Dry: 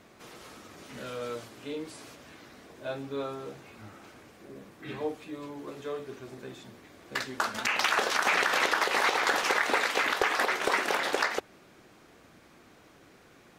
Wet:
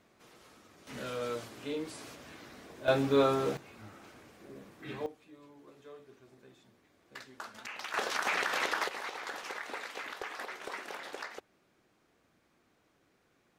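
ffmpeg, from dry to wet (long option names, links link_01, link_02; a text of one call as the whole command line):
ffmpeg -i in.wav -af "asetnsamples=nb_out_samples=441:pad=0,asendcmd='0.87 volume volume 0dB;2.88 volume volume 9dB;3.57 volume volume -3dB;5.06 volume volume -15dB;7.94 volume volume -6dB;8.89 volume volume -14.5dB',volume=-10dB" out.wav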